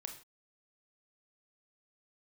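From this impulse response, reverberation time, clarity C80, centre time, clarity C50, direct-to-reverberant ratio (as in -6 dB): not exponential, 13.0 dB, 16 ms, 8.5 dB, 4.5 dB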